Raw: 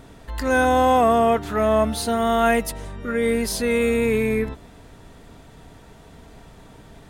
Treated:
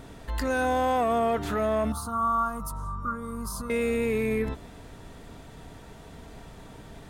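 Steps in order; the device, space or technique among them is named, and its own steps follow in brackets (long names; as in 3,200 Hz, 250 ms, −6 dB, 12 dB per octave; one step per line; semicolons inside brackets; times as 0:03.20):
soft clipper into limiter (soft clipping −11 dBFS, distortion −21 dB; brickwall limiter −19.5 dBFS, peak gain reduction 7.5 dB)
0:01.92–0:03.70: drawn EQ curve 150 Hz 0 dB, 420 Hz −16 dB, 750 Hz −10 dB, 1,200 Hz +15 dB, 1,800 Hz −24 dB, 2,600 Hz −25 dB, 5,300 Hz −11 dB, 11,000 Hz −5 dB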